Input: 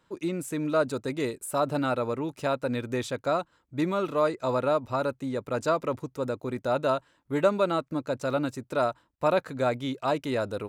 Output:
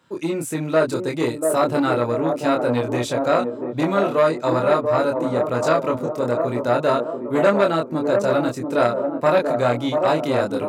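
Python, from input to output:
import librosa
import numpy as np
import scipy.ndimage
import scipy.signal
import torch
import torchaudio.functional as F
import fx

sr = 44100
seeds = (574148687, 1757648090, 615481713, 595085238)

y = scipy.signal.sosfilt(scipy.signal.butter(4, 85.0, 'highpass', fs=sr, output='sos'), x)
y = fx.doubler(y, sr, ms=25.0, db=-3)
y = fx.echo_wet_bandpass(y, sr, ms=688, feedback_pct=47, hz=460.0, wet_db=-4)
y = fx.transformer_sat(y, sr, knee_hz=970.0)
y = F.gain(torch.from_numpy(y), 6.0).numpy()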